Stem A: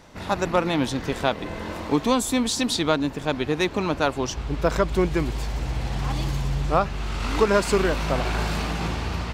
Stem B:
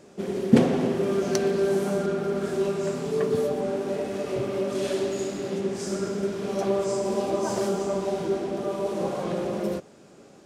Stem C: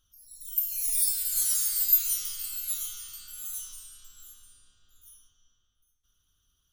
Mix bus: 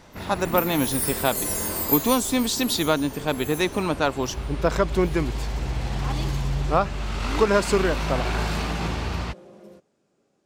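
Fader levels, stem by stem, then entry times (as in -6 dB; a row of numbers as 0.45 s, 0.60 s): 0.0 dB, -18.5 dB, -2.0 dB; 0.00 s, 0.00 s, 0.00 s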